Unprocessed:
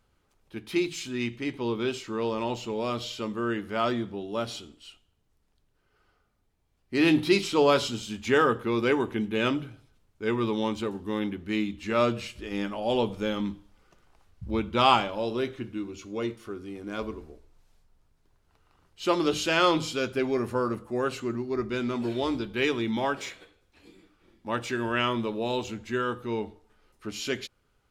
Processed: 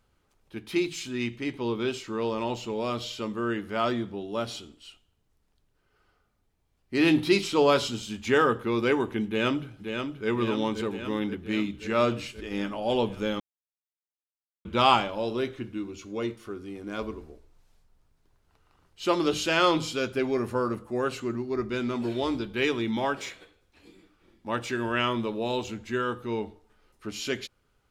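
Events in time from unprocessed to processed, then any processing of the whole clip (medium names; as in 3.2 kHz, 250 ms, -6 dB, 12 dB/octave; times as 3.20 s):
9.26–10.28 s: echo throw 530 ms, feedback 70%, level -6 dB
13.40–14.65 s: mute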